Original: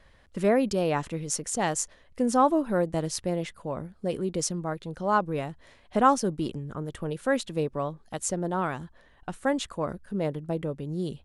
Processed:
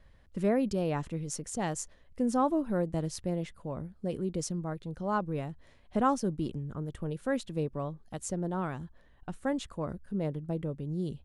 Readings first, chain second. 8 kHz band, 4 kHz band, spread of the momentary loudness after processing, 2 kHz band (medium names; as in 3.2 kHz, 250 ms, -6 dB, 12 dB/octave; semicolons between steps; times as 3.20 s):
-8.5 dB, -8.5 dB, 11 LU, -8.0 dB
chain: bass shelf 300 Hz +9.5 dB; trim -8.5 dB